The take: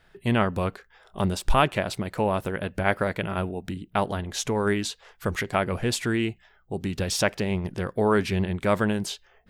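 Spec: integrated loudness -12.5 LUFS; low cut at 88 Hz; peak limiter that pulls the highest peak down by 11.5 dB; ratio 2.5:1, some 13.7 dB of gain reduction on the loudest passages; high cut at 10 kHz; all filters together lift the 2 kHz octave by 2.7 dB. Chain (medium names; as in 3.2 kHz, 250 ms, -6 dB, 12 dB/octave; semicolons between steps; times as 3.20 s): high-pass 88 Hz; low-pass 10 kHz; peaking EQ 2 kHz +3.5 dB; compression 2.5:1, threshold -37 dBFS; trim +27.5 dB; peak limiter 0 dBFS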